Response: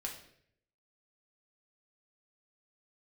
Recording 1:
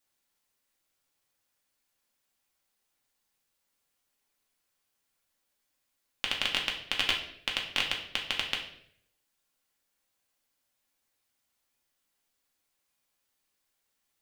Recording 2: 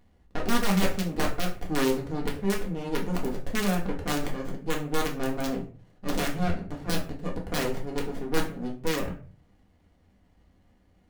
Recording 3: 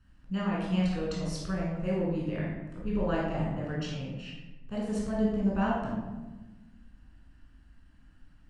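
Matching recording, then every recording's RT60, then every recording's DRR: 1; 0.65, 0.40, 1.2 s; -1.0, -1.5, -5.0 dB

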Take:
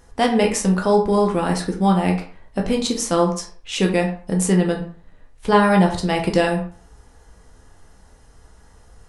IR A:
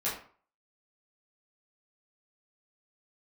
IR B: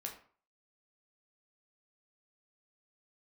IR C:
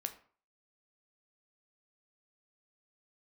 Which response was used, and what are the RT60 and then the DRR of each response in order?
B; 0.45, 0.45, 0.45 s; -9.0, 0.5, 7.0 dB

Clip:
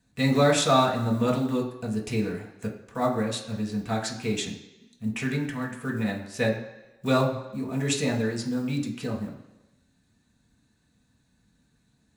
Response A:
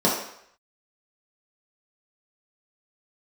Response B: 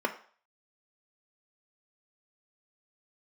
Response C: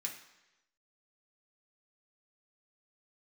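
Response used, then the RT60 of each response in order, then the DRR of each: C; 0.70, 0.45, 1.0 s; -6.0, 5.5, -1.0 dB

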